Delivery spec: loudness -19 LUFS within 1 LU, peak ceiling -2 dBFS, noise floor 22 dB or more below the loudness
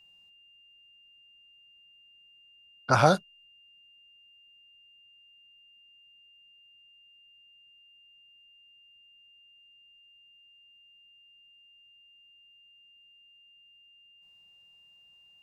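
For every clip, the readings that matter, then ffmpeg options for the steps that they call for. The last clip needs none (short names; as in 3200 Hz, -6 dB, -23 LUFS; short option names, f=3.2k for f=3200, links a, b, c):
steady tone 2800 Hz; tone level -56 dBFS; loudness -24.5 LUFS; peak -5.0 dBFS; loudness target -19.0 LUFS
-> -af "bandreject=f=2.8k:w=30"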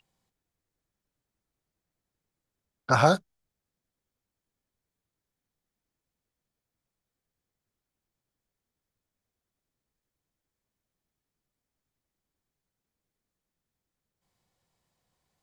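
steady tone none; loudness -24.0 LUFS; peak -5.0 dBFS; loudness target -19.0 LUFS
-> -af "volume=5dB,alimiter=limit=-2dB:level=0:latency=1"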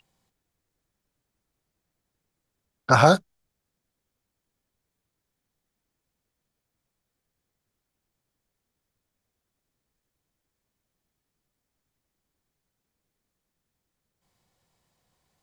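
loudness -19.5 LUFS; peak -2.0 dBFS; noise floor -84 dBFS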